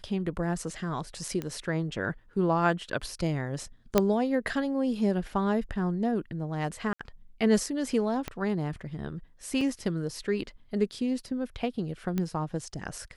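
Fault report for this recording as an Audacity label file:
1.420000	1.420000	pop -20 dBFS
3.980000	3.980000	pop -7 dBFS
6.930000	7.000000	dropout 65 ms
8.280000	8.280000	pop -17 dBFS
9.610000	9.610000	dropout 2.8 ms
12.180000	12.180000	pop -17 dBFS

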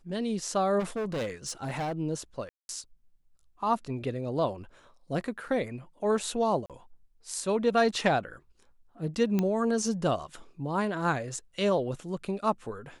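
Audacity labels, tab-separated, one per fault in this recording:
0.790000	1.930000	clipped -28.5 dBFS
2.490000	2.690000	dropout 201 ms
6.660000	6.700000	dropout 37 ms
9.390000	9.390000	pop -15 dBFS

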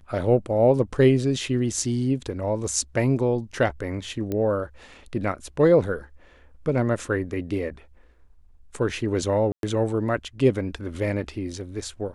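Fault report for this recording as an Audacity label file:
4.320000	4.320000	pop -16 dBFS
9.520000	9.630000	dropout 112 ms

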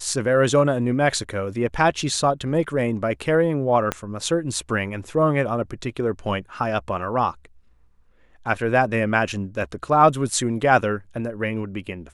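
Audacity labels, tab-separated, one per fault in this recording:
3.920000	3.920000	pop -8 dBFS

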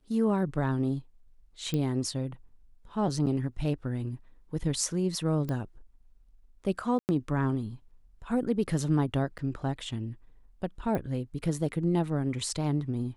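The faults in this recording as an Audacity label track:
1.740000	1.740000	pop -18 dBFS
3.260000	3.270000	dropout 7.1 ms
5.490000	5.490000	pop -22 dBFS
6.990000	7.090000	dropout 99 ms
9.380000	9.390000	dropout 8.7 ms
10.950000	10.950000	pop -20 dBFS

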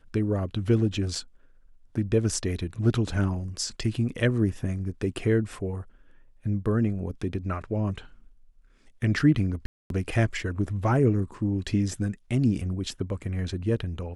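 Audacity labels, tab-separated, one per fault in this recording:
1.150000	1.150000	dropout 3.5 ms
9.660000	9.900000	dropout 242 ms

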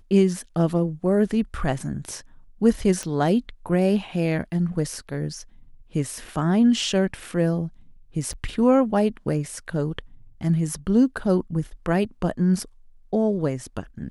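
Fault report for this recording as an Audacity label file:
3.030000	3.030000	pop -17 dBFS
8.330000	8.340000	dropout 5.4 ms

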